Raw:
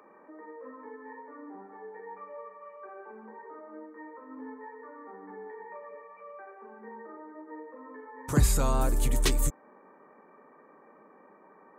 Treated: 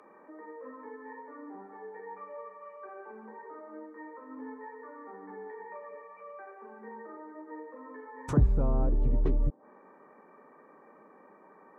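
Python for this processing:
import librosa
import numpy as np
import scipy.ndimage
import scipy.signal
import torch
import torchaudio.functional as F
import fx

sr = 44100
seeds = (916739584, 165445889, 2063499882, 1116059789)

y = fx.env_lowpass_down(x, sr, base_hz=580.0, full_db=-25.5)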